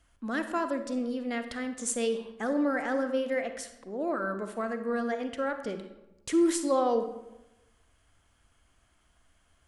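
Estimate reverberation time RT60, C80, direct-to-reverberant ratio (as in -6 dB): 0.95 s, 11.5 dB, 7.5 dB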